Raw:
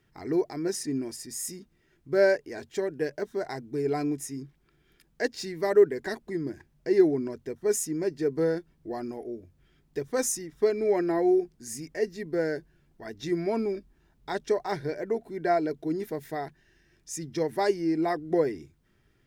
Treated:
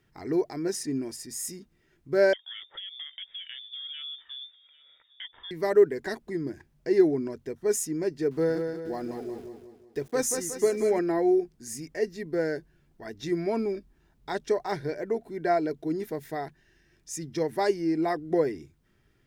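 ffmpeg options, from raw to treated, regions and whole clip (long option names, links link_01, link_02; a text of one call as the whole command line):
ffmpeg -i in.wav -filter_complex "[0:a]asettb=1/sr,asplit=3[link_01][link_02][link_03];[link_01]atrim=end=2.334[link_04];[link_02]atrim=start=2.33:end=5.51,asetpts=PTS-STARTPTS,afade=type=in:duration=0.004:curve=qsin,afade=type=out:start_time=3.176:duration=0.004:curve=qsin,acompressor=threshold=-36dB:ratio=10:attack=3.2:release=140:knee=1:detection=peak,aecho=1:1:800:0.0891,atrim=end_sample=140238,lowpass=frequency=3100:width_type=q:width=0.5098,lowpass=frequency=3100:width_type=q:width=0.6013,lowpass=frequency=3100:width_type=q:width=0.9,lowpass=frequency=3100:width_type=q:width=2.563,afreqshift=-3700[link_05];[link_03]atrim=start=5.506[link_06];[link_04][link_05]acrossfade=duration=0.004:curve1=hsin:curve2=qsin[link_07];[link_07][link_06]acrossfade=duration=0.004:curve1=qsin:curve2=hsin,asettb=1/sr,asplit=3[link_08][link_09][link_10];[link_08]atrim=end=8.314[link_11];[link_09]atrim=start=8.31:end=10.99,asetpts=PTS-STARTPTS,afade=type=in:duration=0.004:curve=qsin,afade=type=out:start_time=2.676:duration=0.004:curve=qsin,aeval=exprs='val(0)*gte(abs(val(0)),0.00282)':channel_layout=same,aecho=1:1:182|364|546|728|910:0.501|0.226|0.101|0.0457|0.0206,atrim=end_sample=118188[link_12];[link_10]atrim=start=10.986[link_13];[link_11][link_12]acrossfade=duration=0.004:curve1=hsin:curve2=qsin[link_14];[link_14][link_13]acrossfade=duration=0.004:curve1=qsin:curve2=hsin" out.wav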